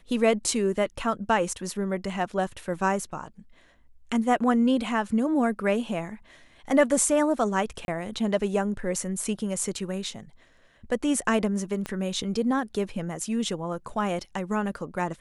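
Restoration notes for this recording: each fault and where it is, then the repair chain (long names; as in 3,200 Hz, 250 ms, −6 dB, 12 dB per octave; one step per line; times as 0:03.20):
0:07.85–0:07.88: drop-out 31 ms
0:11.86: click −17 dBFS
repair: click removal
repair the gap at 0:07.85, 31 ms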